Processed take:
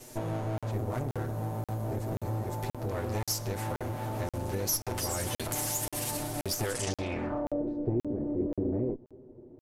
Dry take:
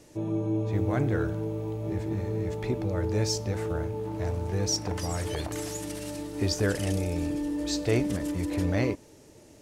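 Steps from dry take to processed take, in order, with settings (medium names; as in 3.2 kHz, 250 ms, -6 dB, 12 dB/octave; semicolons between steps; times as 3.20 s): comb filter that takes the minimum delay 8 ms; 0.71–2.89 s: peaking EQ 2.6 kHz -7.5 dB 2 oct; gain riding 2 s; treble shelf 6.8 kHz +6.5 dB; compression 4:1, threshold -34 dBFS, peak gain reduction 10.5 dB; low-pass sweep 13 kHz -> 390 Hz, 6.67–7.65 s; crackling interface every 0.53 s, samples 2048, zero, from 0.58 s; trim +3.5 dB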